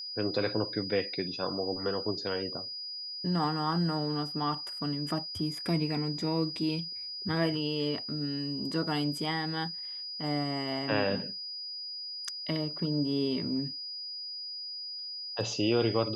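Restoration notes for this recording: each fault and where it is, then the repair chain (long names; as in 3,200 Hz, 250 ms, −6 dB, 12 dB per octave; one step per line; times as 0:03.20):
whistle 4,900 Hz −37 dBFS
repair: notch filter 4,900 Hz, Q 30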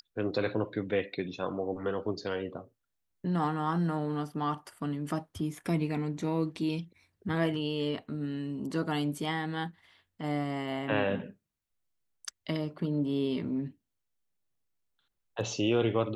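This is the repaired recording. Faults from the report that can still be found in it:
none of them is left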